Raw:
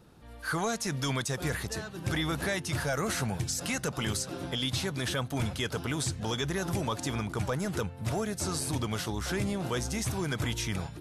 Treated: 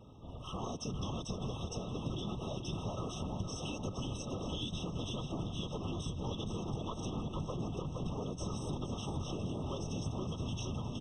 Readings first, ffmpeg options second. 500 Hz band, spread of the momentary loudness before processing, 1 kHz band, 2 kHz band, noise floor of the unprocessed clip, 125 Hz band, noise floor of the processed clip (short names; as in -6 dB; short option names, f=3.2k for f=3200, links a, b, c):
-7.5 dB, 3 LU, -8.0 dB, -21.0 dB, -46 dBFS, -5.5 dB, -45 dBFS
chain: -af "aeval=exprs='clip(val(0),-1,0.015)':c=same,lowpass=f=6.1k:w=0.5412,lowpass=f=6.1k:w=1.3066,afftfilt=real='hypot(re,im)*cos(2*PI*random(0))':imag='hypot(re,im)*sin(2*PI*random(1))':win_size=512:overlap=0.75,aecho=1:1:466|932|1398|1864|2330|2796:0.398|0.207|0.108|0.056|0.0291|0.0151,acompressor=threshold=-42dB:ratio=10,equalizer=f=110:w=1.1:g=4,afftfilt=real='re*eq(mod(floor(b*sr/1024/1300),2),0)':imag='im*eq(mod(floor(b*sr/1024/1300),2),0)':win_size=1024:overlap=0.75,volume=6.5dB"